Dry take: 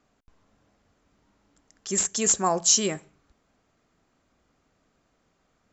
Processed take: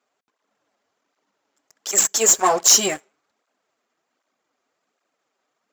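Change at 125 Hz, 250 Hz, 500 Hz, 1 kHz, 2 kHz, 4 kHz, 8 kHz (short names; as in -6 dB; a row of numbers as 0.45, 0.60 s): -5.5 dB, -1.0 dB, +5.5 dB, +7.0 dB, +9.0 dB, +7.0 dB, n/a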